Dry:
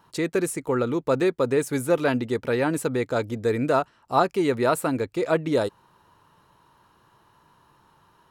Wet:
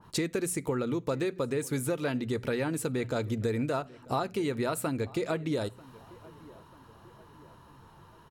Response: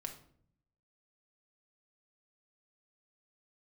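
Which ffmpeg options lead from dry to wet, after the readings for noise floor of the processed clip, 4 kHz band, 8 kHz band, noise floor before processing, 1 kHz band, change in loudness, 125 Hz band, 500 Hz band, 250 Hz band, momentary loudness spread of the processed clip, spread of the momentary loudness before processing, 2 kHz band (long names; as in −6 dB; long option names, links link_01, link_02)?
−55 dBFS, −3.5 dB, −2.0 dB, −61 dBFS, −10.0 dB, −7.0 dB, −3.0 dB, −8.5 dB, −6.0 dB, 16 LU, 4 LU, −7.5 dB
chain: -filter_complex "[0:a]lowshelf=frequency=210:gain=10.5,bandreject=frequency=60:width_type=h:width=6,bandreject=frequency=120:width_type=h:width=6,bandreject=frequency=180:width_type=h:width=6,acompressor=threshold=-30dB:ratio=6,asplit=2[link_01][link_02];[link_02]adelay=941,lowpass=frequency=2700:poles=1,volume=-21.5dB,asplit=2[link_03][link_04];[link_04]adelay=941,lowpass=frequency=2700:poles=1,volume=0.52,asplit=2[link_05][link_06];[link_06]adelay=941,lowpass=frequency=2700:poles=1,volume=0.52,asplit=2[link_07][link_08];[link_08]adelay=941,lowpass=frequency=2700:poles=1,volume=0.52[link_09];[link_01][link_03][link_05][link_07][link_09]amix=inputs=5:normalize=0,asplit=2[link_10][link_11];[1:a]atrim=start_sample=2205,afade=type=out:start_time=0.14:duration=0.01,atrim=end_sample=6615,adelay=9[link_12];[link_11][link_12]afir=irnorm=-1:irlink=0,volume=-14dB[link_13];[link_10][link_13]amix=inputs=2:normalize=0,adynamicequalizer=threshold=0.00282:dfrequency=1900:dqfactor=0.7:tfrequency=1900:tqfactor=0.7:attack=5:release=100:ratio=0.375:range=3:mode=boostabove:tftype=highshelf,volume=1.5dB"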